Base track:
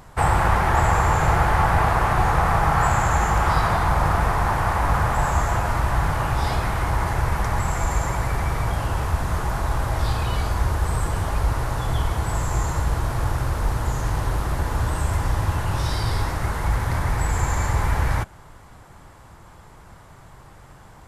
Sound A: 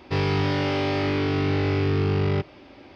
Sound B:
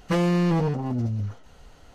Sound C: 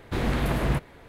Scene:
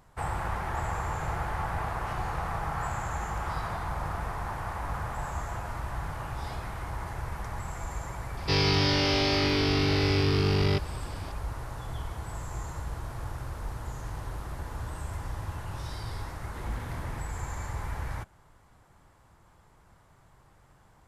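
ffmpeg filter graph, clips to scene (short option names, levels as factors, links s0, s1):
-filter_complex "[0:a]volume=0.211[s0];[2:a]highpass=1300[s1];[1:a]equalizer=f=5200:w=1:g=14.5[s2];[s1]atrim=end=1.94,asetpts=PTS-STARTPTS,volume=0.158,afade=t=in:d=0.004:c=hsin,afade=t=out:st=1.936:d=0.004:c=hsin,adelay=1960[s3];[s2]atrim=end=2.95,asetpts=PTS-STARTPTS,volume=0.708,afade=t=in:d=0.004:c=hsin,afade=t=out:st=2.946:d=0.004:c=hsin,adelay=8370[s4];[3:a]atrim=end=1.08,asetpts=PTS-STARTPTS,volume=0.133,afade=t=in:d=0.004:c=hsin,afade=t=out:st=1.076:d=0.004:c=hsin,adelay=16430[s5];[s0][s3][s4][s5]amix=inputs=4:normalize=0"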